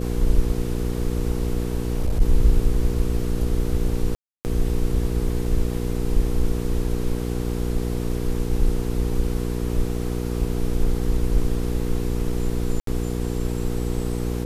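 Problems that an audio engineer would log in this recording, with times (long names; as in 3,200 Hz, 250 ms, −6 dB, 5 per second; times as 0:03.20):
mains hum 60 Hz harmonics 8 −26 dBFS
0:01.75–0:02.22: clipping −16.5 dBFS
0:04.15–0:04.45: drop-out 299 ms
0:12.80–0:12.87: drop-out 73 ms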